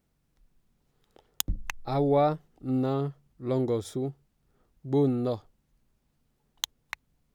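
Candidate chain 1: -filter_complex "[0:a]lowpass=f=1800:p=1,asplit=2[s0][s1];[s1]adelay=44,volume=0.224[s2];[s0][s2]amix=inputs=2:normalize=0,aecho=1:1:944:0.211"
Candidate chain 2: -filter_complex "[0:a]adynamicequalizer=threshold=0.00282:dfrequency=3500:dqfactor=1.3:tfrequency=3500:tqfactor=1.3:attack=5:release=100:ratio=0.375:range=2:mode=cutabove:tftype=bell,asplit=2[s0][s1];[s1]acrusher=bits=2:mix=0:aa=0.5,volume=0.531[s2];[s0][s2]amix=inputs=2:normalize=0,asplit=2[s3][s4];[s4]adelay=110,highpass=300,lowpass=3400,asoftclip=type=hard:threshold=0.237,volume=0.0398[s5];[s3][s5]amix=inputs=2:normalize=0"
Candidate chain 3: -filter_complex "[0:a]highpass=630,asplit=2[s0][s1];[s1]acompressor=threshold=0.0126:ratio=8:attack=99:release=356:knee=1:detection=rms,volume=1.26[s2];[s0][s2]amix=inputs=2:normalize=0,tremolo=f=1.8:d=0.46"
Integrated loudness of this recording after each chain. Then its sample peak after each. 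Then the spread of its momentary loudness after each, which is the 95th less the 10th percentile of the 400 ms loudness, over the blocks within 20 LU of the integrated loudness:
-29.5 LUFS, -28.5 LUFS, -33.0 LUFS; -14.0 dBFS, -4.0 dBFS, -3.5 dBFS; 20 LU, 15 LU, 15 LU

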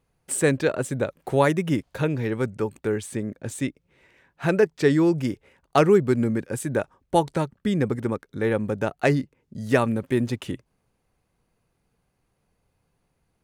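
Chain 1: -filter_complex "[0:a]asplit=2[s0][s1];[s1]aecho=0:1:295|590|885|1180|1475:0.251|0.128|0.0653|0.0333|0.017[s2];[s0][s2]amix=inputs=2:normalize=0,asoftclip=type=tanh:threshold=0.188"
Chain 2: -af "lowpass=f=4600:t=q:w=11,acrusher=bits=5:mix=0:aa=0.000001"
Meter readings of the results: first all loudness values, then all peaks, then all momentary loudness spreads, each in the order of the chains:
-26.0 LUFS, -23.5 LUFS; -14.5 dBFS, -3.0 dBFS; 11 LU, 11 LU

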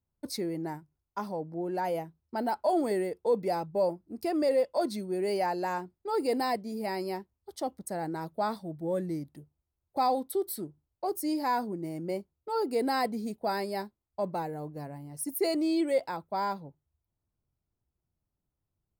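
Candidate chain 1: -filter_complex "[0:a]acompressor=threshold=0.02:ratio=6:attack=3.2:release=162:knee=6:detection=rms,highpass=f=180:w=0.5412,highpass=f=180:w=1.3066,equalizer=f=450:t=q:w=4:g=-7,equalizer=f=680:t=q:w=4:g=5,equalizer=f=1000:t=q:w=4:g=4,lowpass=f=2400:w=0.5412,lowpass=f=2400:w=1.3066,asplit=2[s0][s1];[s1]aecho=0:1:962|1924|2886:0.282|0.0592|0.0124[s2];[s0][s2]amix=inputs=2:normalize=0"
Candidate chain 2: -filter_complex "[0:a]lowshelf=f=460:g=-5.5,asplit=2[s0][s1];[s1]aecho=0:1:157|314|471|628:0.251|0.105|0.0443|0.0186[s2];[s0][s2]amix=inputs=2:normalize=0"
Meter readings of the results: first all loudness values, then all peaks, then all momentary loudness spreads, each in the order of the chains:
-39.5 LUFS, -34.0 LUFS; -25.0 dBFS, -18.0 dBFS; 11 LU, 11 LU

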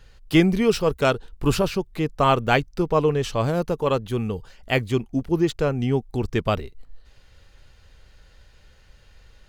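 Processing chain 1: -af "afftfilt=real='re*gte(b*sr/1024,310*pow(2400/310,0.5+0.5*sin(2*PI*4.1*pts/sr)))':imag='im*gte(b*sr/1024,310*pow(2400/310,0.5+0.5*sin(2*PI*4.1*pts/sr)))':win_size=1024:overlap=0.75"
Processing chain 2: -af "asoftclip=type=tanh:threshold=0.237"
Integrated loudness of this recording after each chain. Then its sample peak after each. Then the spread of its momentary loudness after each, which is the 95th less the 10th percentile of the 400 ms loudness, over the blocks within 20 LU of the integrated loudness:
-28.5 LUFS, -24.5 LUFS; -6.0 dBFS, -12.5 dBFS; 16 LU, 6 LU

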